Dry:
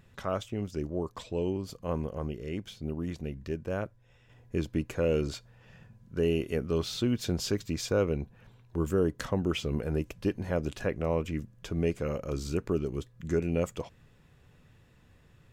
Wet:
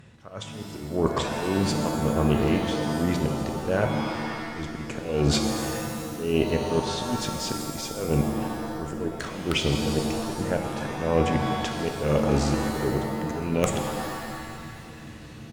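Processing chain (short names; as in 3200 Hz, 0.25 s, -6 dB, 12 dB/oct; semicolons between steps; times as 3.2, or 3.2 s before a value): HPF 56 Hz 12 dB/oct; reverse; compressor 12:1, threshold -36 dBFS, peak gain reduction 15 dB; reverse; downsampling 22050 Hz; AGC gain up to 7 dB; in parallel at -5 dB: wrapped overs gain 18.5 dB; on the sum: auto swell 0.246 s; added harmonics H 2 -11 dB, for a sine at -14.5 dBFS; shimmer reverb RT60 1.8 s, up +7 st, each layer -2 dB, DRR 4.5 dB; gain +5 dB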